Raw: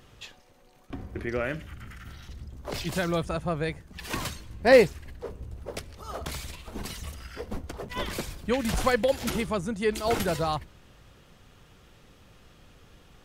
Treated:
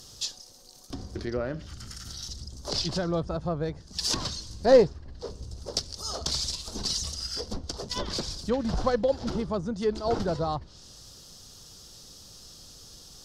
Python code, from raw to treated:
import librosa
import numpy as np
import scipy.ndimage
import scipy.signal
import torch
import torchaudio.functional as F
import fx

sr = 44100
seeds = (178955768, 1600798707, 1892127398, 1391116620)

y = fx.tracing_dist(x, sr, depth_ms=0.09)
y = fx.env_lowpass_down(y, sr, base_hz=1400.0, full_db=-26.0)
y = fx.high_shelf_res(y, sr, hz=3400.0, db=14.0, q=3.0)